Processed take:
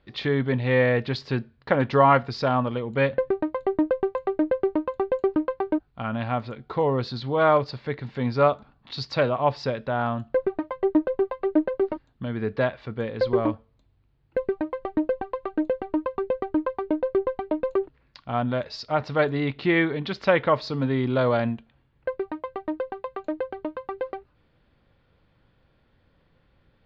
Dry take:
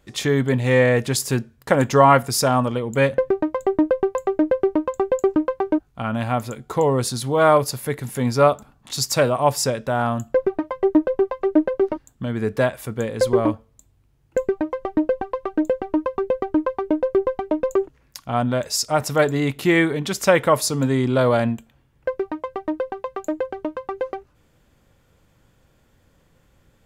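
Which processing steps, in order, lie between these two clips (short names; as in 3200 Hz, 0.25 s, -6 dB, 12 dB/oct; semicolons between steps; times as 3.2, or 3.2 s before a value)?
elliptic low-pass 4400 Hz, stop band 60 dB; gain -3.5 dB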